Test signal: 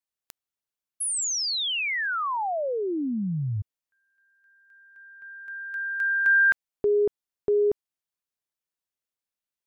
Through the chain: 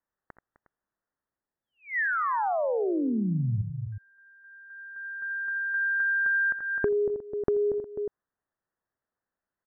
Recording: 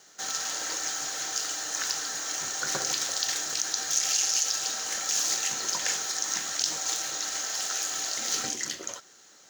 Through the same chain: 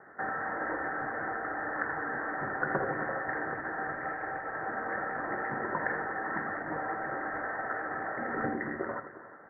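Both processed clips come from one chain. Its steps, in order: dynamic EQ 1300 Hz, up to -5 dB, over -42 dBFS, Q 0.79; steep low-pass 1900 Hz 96 dB/oct; tapped delay 66/83/257/360 ms -18/-10.5/-16/-17 dB; compressor 6:1, threshold -34 dBFS; gain +9 dB

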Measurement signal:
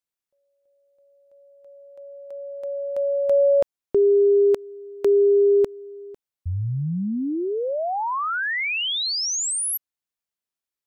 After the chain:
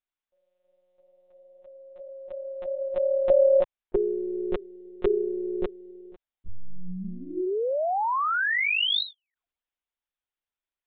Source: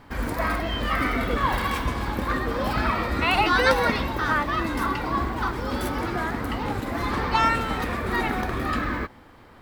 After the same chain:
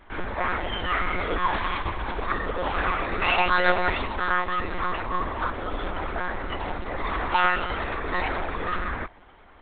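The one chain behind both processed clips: monotone LPC vocoder at 8 kHz 180 Hz; bell 140 Hz -13.5 dB 1.2 oct

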